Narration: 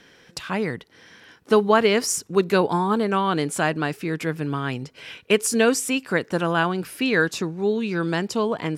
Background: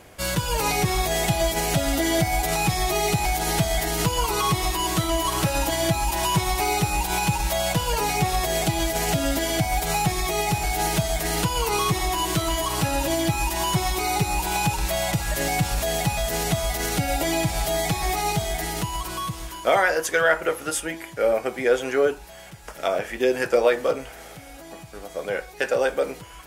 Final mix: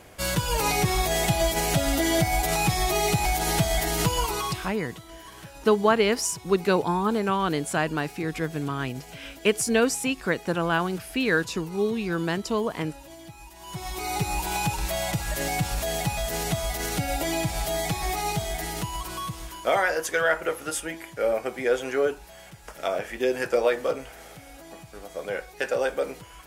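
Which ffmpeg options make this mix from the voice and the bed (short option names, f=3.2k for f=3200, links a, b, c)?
-filter_complex "[0:a]adelay=4150,volume=-3dB[a];[1:a]volume=17dB,afade=t=out:st=4.12:d=0.62:silence=0.0944061,afade=t=in:st=13.61:d=0.65:silence=0.125893[b];[a][b]amix=inputs=2:normalize=0"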